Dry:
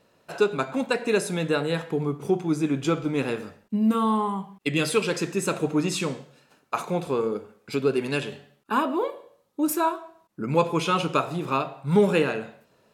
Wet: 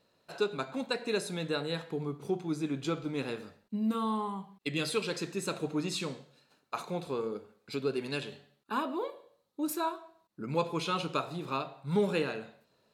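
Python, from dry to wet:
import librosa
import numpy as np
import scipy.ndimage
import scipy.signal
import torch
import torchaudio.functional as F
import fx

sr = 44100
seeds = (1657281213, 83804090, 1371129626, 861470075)

y = fx.peak_eq(x, sr, hz=4100.0, db=8.5, octaves=0.36)
y = y * librosa.db_to_amplitude(-9.0)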